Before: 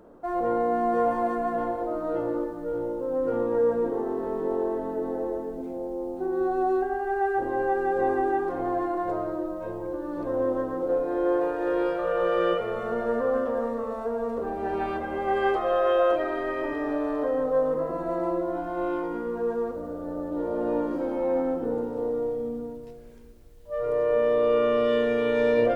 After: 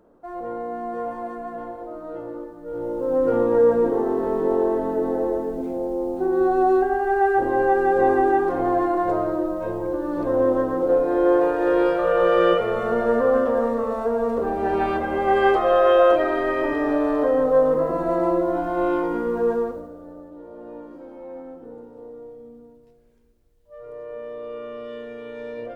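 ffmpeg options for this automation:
-af "volume=6.5dB,afade=t=in:st=2.63:d=0.5:silence=0.251189,afade=t=out:st=19.51:d=0.38:silence=0.266073,afade=t=out:st=19.89:d=0.49:silence=0.446684"

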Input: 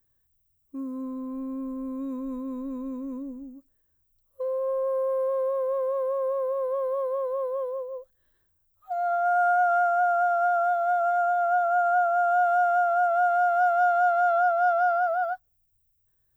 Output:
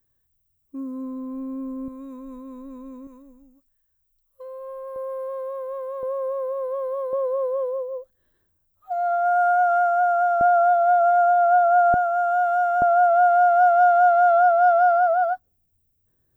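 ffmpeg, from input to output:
-af "asetnsamples=n=441:p=0,asendcmd='1.88 equalizer g -5.5;3.07 equalizer g -13;4.96 equalizer g -6.5;6.03 equalizer g 0.5;7.13 equalizer g 7;10.41 equalizer g 14;11.94 equalizer g 3;12.82 equalizer g 13',equalizer=f=270:t=o:w=2.7:g=2"

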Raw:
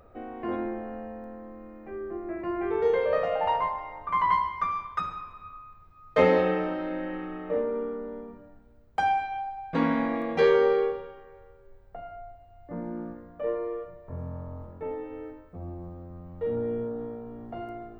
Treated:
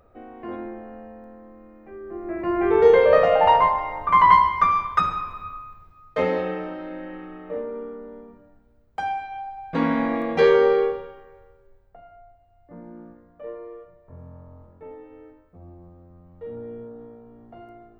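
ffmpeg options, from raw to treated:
-af "volume=17dB,afade=t=in:st=2.03:d=0.76:silence=0.237137,afade=t=out:st=5.35:d=0.83:silence=0.237137,afade=t=in:st=9.21:d=0.92:silence=0.446684,afade=t=out:st=10.82:d=1.14:silence=0.281838"

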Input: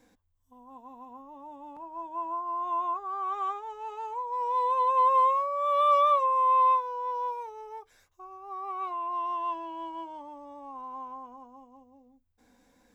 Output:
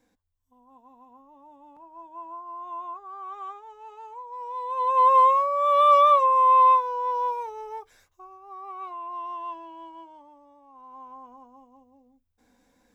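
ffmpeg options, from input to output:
-af "volume=15.5dB,afade=t=in:st=4.67:d=0.43:silence=0.266073,afade=t=out:st=7.74:d=0.66:silence=0.375837,afade=t=out:st=9.41:d=1.26:silence=0.398107,afade=t=in:st=10.67:d=0.62:silence=0.316228"

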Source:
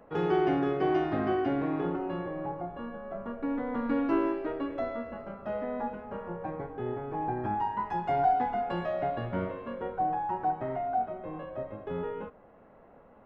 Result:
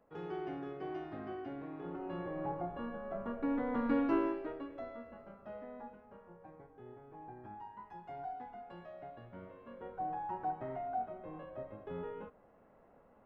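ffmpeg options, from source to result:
-af "volume=8dB,afade=t=in:st=1.8:d=0.73:silence=0.237137,afade=t=out:st=3.94:d=0.74:silence=0.334965,afade=t=out:st=5.3:d=0.96:silence=0.473151,afade=t=in:st=9.42:d=0.84:silence=0.298538"

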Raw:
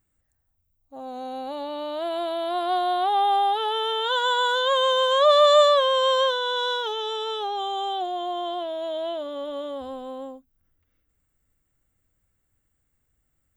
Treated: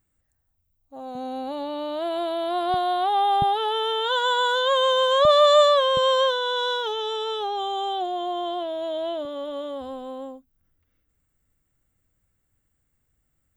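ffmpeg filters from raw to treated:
-af "asetnsamples=n=441:p=0,asendcmd='1.15 equalizer g 12.5;2.74 equalizer g 1.5;3.42 equalizer g 12.5;5.25 equalizer g 2.5;5.97 equalizer g 12.5;9.25 equalizer g 2.5',equalizer=f=150:t=o:w=1.3:g=1"

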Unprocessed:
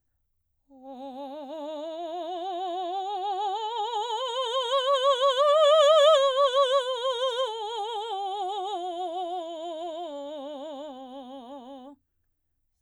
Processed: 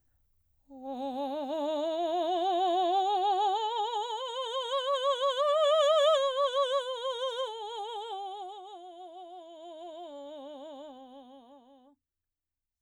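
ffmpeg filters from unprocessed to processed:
-af "volume=11.5dB,afade=t=out:st=2.98:d=1.21:silence=0.316228,afade=t=out:st=8.14:d=0.47:silence=0.375837,afade=t=in:st=9.33:d=0.92:silence=0.421697,afade=t=out:st=10.94:d=0.73:silence=0.398107"

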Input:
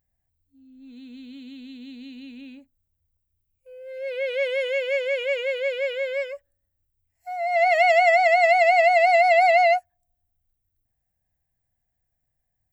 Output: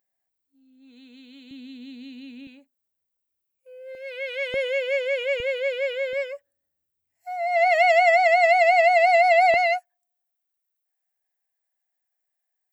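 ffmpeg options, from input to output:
-af "asetnsamples=n=441:p=0,asendcmd='1.51 highpass f 120;2.47 highpass f 350;3.95 highpass f 740;4.54 highpass f 220;5.4 highpass f 89;6.13 highpass f 200;9.54 highpass f 820',highpass=370"

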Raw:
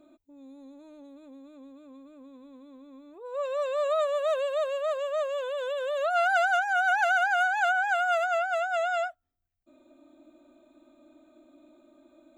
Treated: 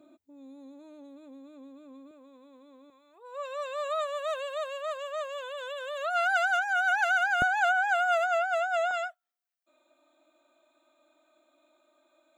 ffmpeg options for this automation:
-af "asetnsamples=n=441:p=0,asendcmd='2.11 highpass f 380;2.9 highpass f 830;7.42 highpass f 220;8.91 highpass f 840',highpass=110"

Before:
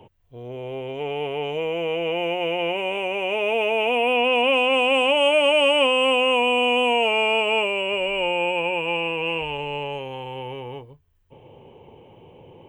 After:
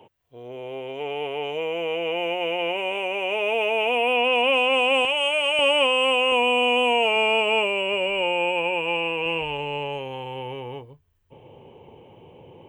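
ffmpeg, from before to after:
-af "asetnsamples=n=441:p=0,asendcmd='5.05 highpass f 1400;5.59 highpass f 440;6.32 highpass f 200;7.16 highpass f 60;8.22 highpass f 180;9.26 highpass f 43',highpass=f=340:p=1"

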